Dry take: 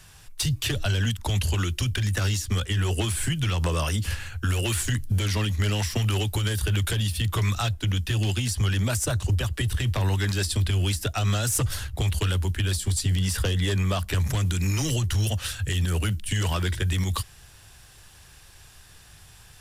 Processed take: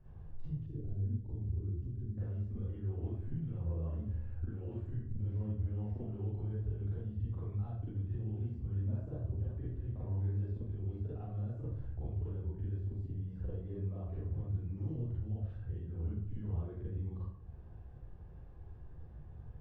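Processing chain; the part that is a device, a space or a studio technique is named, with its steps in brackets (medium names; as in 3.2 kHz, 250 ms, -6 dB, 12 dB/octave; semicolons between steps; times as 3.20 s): television next door (compression 5:1, threshold -40 dBFS, peak gain reduction 17.5 dB; low-pass 450 Hz 12 dB/octave; reverberation RT60 0.65 s, pre-delay 36 ms, DRR -8.5 dB); 0.66–2.18 s: high-order bell 1.4 kHz -14.5 dB 2.9 oct; trim -7 dB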